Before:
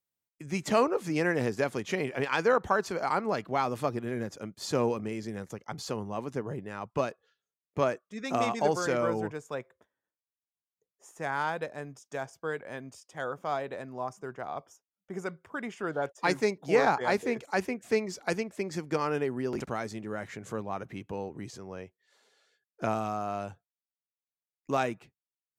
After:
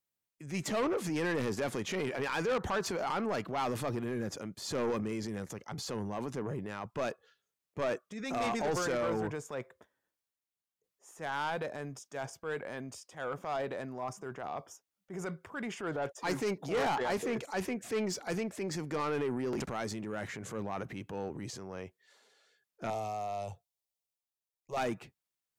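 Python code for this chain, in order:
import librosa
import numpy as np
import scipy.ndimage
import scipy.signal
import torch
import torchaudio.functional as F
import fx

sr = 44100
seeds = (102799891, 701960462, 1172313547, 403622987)

y = fx.transient(x, sr, attack_db=-6, sustain_db=5)
y = 10.0 ** (-27.0 / 20.0) * np.tanh(y / 10.0 ** (-27.0 / 20.0))
y = fx.fixed_phaser(y, sr, hz=640.0, stages=4, at=(22.9, 24.77))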